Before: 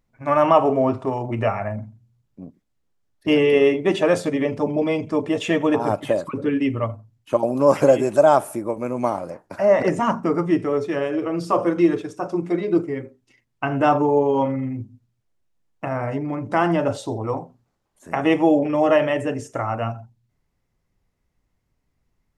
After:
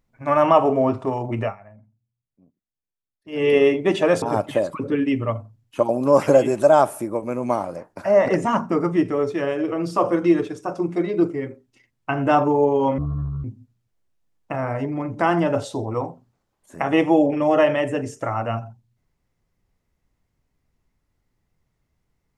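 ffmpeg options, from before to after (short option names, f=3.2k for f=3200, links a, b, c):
-filter_complex "[0:a]asplit=6[a][b][c][d][e][f];[a]atrim=end=1.56,asetpts=PTS-STARTPTS,afade=t=out:st=1.39:d=0.17:silence=0.105925[g];[b]atrim=start=1.56:end=3.32,asetpts=PTS-STARTPTS,volume=-19.5dB[h];[c]atrim=start=3.32:end=4.222,asetpts=PTS-STARTPTS,afade=t=in:d=0.17:silence=0.105925[i];[d]atrim=start=5.758:end=14.524[j];[e]atrim=start=14.52:end=14.77,asetpts=PTS-STARTPTS,asetrate=23814,aresample=44100[k];[f]atrim=start=14.766[l];[g][h][i]concat=n=3:v=0:a=1[m];[m][j]acrossfade=d=0.004:c1=hsin:c2=hsin[n];[n][k]acrossfade=d=0.004:c1=hsin:c2=hsin[o];[o][l]acrossfade=d=0.004:c1=hsin:c2=hsin"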